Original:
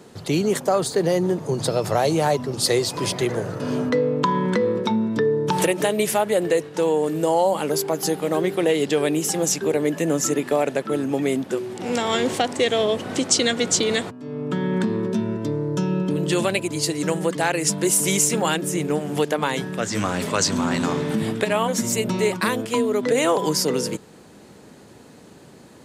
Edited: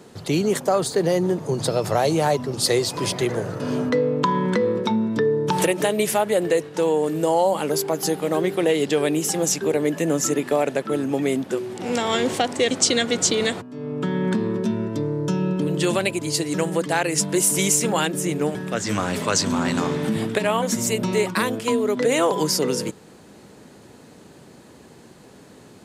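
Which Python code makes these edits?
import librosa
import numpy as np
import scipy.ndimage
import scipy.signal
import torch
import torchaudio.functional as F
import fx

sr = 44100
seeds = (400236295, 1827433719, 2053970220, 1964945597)

y = fx.edit(x, sr, fx.cut(start_s=12.71, length_s=0.49),
    fx.cut(start_s=19.04, length_s=0.57), tone=tone)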